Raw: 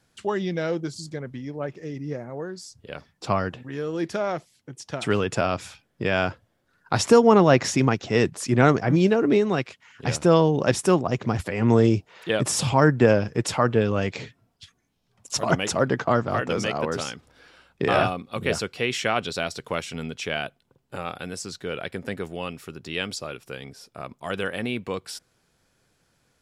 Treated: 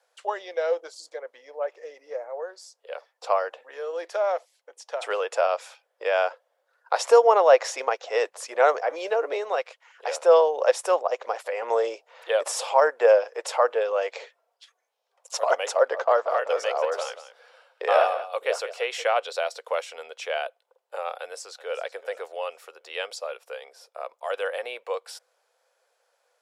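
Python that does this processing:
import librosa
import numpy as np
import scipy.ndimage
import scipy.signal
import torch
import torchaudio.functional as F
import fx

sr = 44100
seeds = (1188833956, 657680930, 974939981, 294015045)

y = fx.echo_single(x, sr, ms=183, db=-13.0, at=(15.91, 19.02), fade=0.02)
y = fx.echo_throw(y, sr, start_s=21.17, length_s=0.65, ms=380, feedback_pct=30, wet_db=-15.5)
y = scipy.signal.sosfilt(scipy.signal.cheby1(5, 1.0, 500.0, 'highpass', fs=sr, output='sos'), y)
y = fx.tilt_shelf(y, sr, db=6.5, hz=970.0)
y = F.gain(torch.from_numpy(y), 1.5).numpy()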